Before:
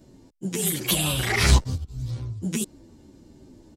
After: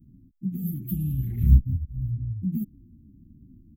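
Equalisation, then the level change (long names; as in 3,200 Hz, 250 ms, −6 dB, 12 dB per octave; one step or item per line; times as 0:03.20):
inverse Chebyshev band-stop filter 460–9,800 Hz, stop band 40 dB
+2.0 dB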